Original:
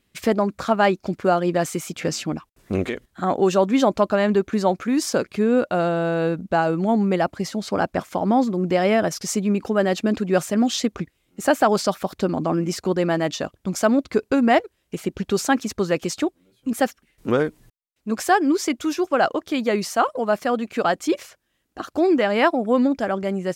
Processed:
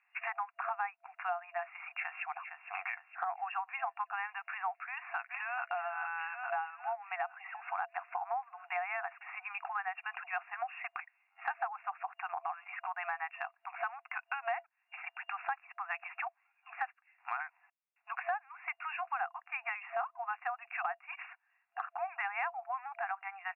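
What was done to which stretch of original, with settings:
0:01.86–0:02.33: delay throw 460 ms, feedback 60%, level −12.5 dB
0:04.86–0:05.64: delay throw 430 ms, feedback 65%, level −5 dB
whole clip: brick-wall band-pass 680–2,800 Hz; downward compressor 5 to 1, threshold −36 dBFS; level +1 dB

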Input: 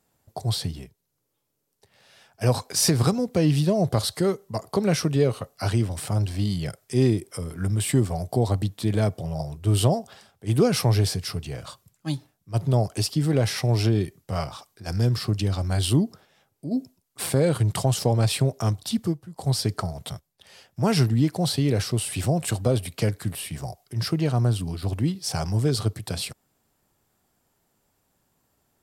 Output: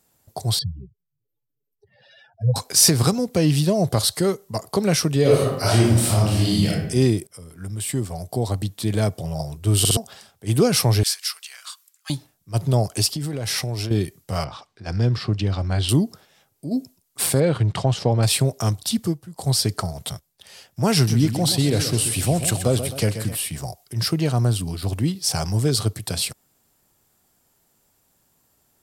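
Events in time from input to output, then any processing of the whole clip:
0:00.59–0:02.56: expanding power law on the bin magnitudes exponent 3.2
0:05.21–0:06.69: thrown reverb, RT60 0.87 s, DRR −5.5 dB
0:07.27–0:09.19: fade in, from −14.5 dB
0:09.79: stutter in place 0.06 s, 3 plays
0:11.03–0:12.10: high-pass filter 1,200 Hz 24 dB per octave
0:13.09–0:13.91: downward compressor 12 to 1, threshold −25 dBFS
0:14.44–0:15.89: low-pass filter 3,400 Hz
0:17.40–0:18.23: low-pass filter 3,300 Hz
0:20.94–0:23.37: feedback echo with a swinging delay time 129 ms, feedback 51%, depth 127 cents, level −10 dB
whole clip: high-shelf EQ 3,900 Hz +7.5 dB; level +2 dB

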